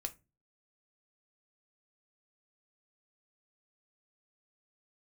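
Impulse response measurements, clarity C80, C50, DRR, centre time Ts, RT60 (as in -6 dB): 28.0 dB, 19.5 dB, 6.5 dB, 4 ms, 0.25 s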